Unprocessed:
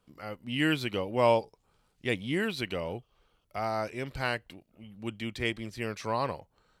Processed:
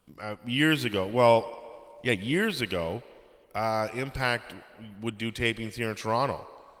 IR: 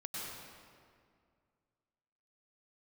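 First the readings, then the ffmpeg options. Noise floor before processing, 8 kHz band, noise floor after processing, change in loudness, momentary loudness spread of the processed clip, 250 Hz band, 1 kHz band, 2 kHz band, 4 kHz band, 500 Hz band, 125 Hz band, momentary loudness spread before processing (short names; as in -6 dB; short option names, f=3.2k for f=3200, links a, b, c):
-73 dBFS, +5.5 dB, -56 dBFS, +4.0 dB, 16 LU, +3.5 dB, +4.0 dB, +4.5 dB, +4.5 dB, +3.5 dB, +3.5 dB, 15 LU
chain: -filter_complex "[0:a]acontrast=53,highshelf=f=5.4k:g=3.5,asplit=2[a][b];[b]highpass=f=320:w=0.5412,highpass=f=320:w=1.3066[c];[1:a]atrim=start_sample=2205,highshelf=f=6.9k:g=7[d];[c][d]afir=irnorm=-1:irlink=0,volume=-17dB[e];[a][e]amix=inputs=2:normalize=0,volume=-2dB" -ar 48000 -c:a libopus -b:a 32k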